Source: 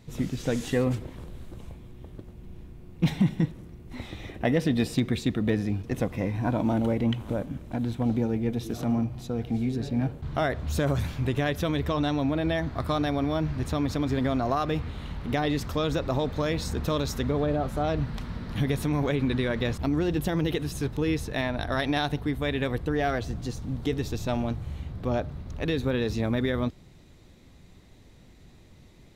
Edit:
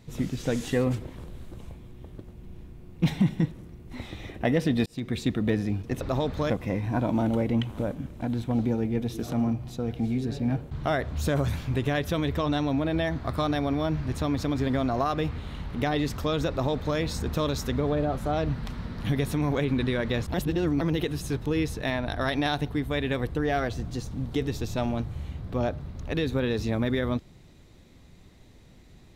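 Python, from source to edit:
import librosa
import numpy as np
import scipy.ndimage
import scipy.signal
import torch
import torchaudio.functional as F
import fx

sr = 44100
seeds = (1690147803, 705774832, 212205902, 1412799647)

y = fx.edit(x, sr, fx.fade_in_span(start_s=4.86, length_s=0.36),
    fx.duplicate(start_s=16.0, length_s=0.49, to_s=6.01),
    fx.reverse_span(start_s=19.85, length_s=0.47), tone=tone)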